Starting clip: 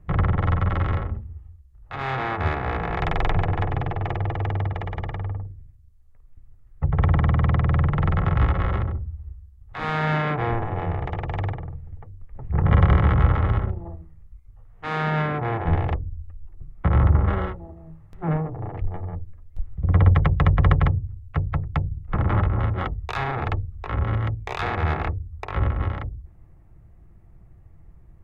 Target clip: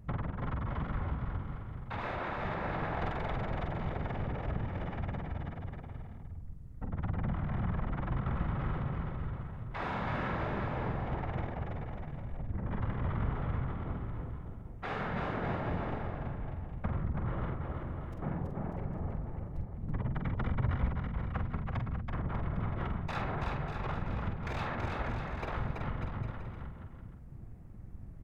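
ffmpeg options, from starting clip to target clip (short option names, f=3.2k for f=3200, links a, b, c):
-filter_complex "[0:a]asplit=2[a][b];[b]asetrate=33038,aresample=44100,atempo=1.33484,volume=-2dB[c];[a][c]amix=inputs=2:normalize=0,acompressor=threshold=-34dB:ratio=3,afftfilt=real='hypot(re,im)*cos(2*PI*random(0))':imag='hypot(re,im)*sin(2*PI*random(1))':win_size=512:overlap=0.75,asplit=2[d][e];[e]adelay=46,volume=-6.5dB[f];[d][f]amix=inputs=2:normalize=0,asplit=2[g][h];[h]aecho=0:1:330|594|805.2|974.2|1109:0.631|0.398|0.251|0.158|0.1[i];[g][i]amix=inputs=2:normalize=0,volume=2dB"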